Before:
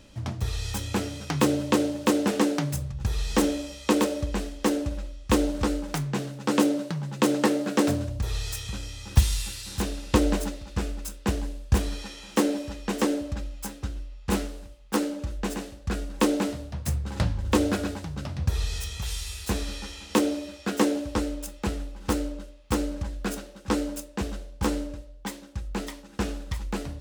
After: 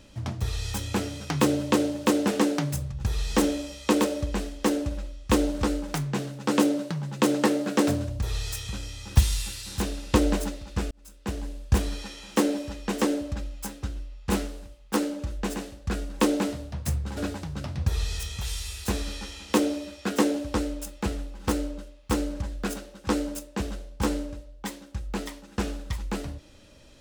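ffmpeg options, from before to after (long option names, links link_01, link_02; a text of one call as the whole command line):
ffmpeg -i in.wav -filter_complex "[0:a]asplit=3[link_01][link_02][link_03];[link_01]atrim=end=10.91,asetpts=PTS-STARTPTS,afade=type=out:start_time=10.906:duration=0.004:curve=hsin[link_04];[link_02]atrim=start=10.91:end=17.172,asetpts=PTS-STARTPTS,afade=type=in:duration=0.73[link_05];[link_03]atrim=start=17.778[link_06];[link_04][link_05]concat=n=2:v=0:a=1[link_07];[link_07][link_06]acrossfade=duration=0.004:curve1=hsin:curve2=hsin" out.wav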